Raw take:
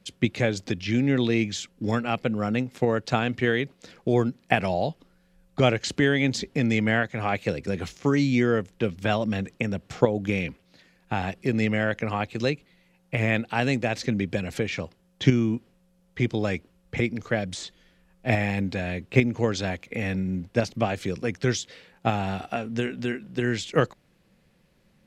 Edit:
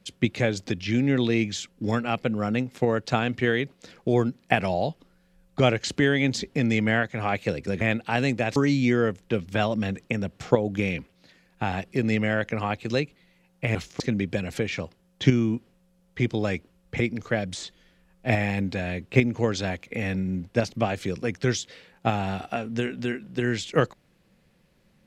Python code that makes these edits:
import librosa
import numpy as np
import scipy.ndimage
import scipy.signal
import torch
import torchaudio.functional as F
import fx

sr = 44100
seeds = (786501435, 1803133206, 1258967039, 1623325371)

y = fx.edit(x, sr, fx.swap(start_s=7.81, length_s=0.25, other_s=13.25, other_length_s=0.75), tone=tone)